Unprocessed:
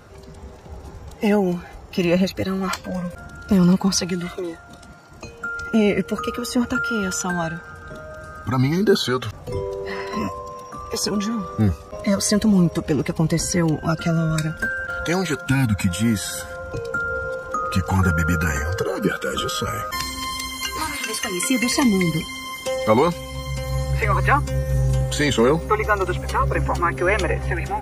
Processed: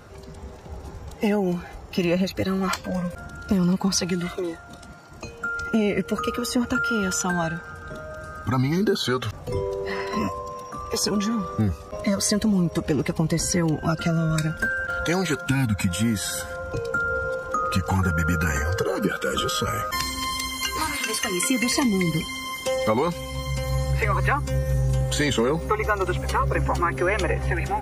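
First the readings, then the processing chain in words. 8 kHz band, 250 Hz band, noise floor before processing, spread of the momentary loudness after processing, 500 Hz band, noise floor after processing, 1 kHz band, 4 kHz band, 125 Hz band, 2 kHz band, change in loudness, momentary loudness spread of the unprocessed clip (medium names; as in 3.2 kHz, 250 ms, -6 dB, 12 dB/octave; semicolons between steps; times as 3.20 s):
-1.0 dB, -3.0 dB, -41 dBFS, 10 LU, -3.0 dB, -41 dBFS, -2.0 dB, -1.5 dB, -2.5 dB, -2.0 dB, -2.5 dB, 13 LU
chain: compression, threshold -18 dBFS, peak gain reduction 7.5 dB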